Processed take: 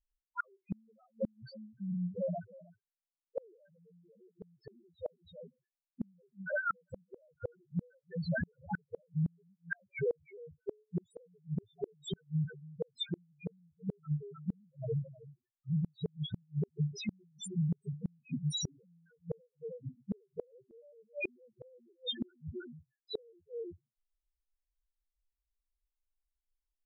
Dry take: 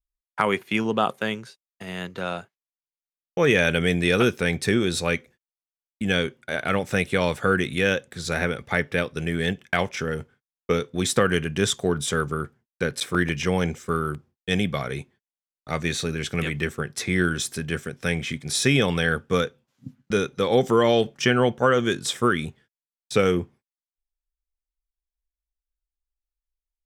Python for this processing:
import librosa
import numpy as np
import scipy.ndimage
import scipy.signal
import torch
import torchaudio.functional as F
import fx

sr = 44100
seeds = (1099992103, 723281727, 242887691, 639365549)

y = x + 10.0 ** (-19.5 / 20.0) * np.pad(x, (int(315 * sr / 1000.0), 0))[:len(x)]
y = fx.spec_topn(y, sr, count=1)
y = fx.gate_flip(y, sr, shuts_db=-31.0, range_db=-39)
y = F.gain(torch.from_numpy(y), 6.5).numpy()